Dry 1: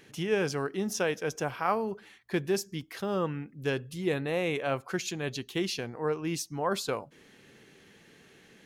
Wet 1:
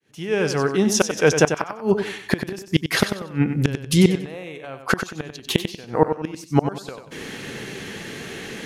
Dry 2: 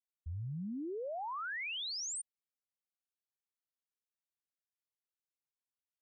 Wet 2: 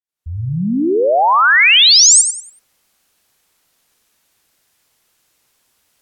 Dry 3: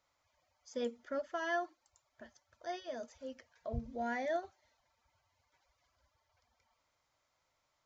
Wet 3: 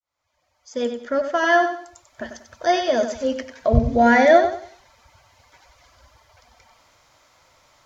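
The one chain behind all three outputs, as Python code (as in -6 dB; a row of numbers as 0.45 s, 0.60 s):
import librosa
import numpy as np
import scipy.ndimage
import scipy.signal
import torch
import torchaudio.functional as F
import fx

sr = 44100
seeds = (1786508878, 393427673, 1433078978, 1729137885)

p1 = fx.fade_in_head(x, sr, length_s=2.49)
p2 = fx.gate_flip(p1, sr, shuts_db=-25.0, range_db=-28)
p3 = fx.env_lowpass_down(p2, sr, base_hz=2700.0, full_db=-26.0)
p4 = p3 + fx.echo_feedback(p3, sr, ms=94, feedback_pct=30, wet_db=-8.5, dry=0)
y = librosa.util.normalize(p4) * 10.0 ** (-1.5 / 20.0)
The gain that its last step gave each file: +22.5 dB, +34.0 dB, +22.5 dB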